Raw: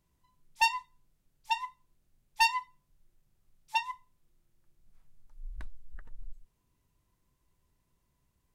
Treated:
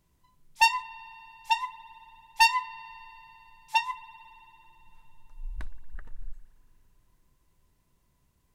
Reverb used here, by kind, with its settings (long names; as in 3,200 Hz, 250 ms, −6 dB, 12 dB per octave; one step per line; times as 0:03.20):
spring reverb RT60 3.6 s, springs 55 ms, chirp 20 ms, DRR 16.5 dB
level +5 dB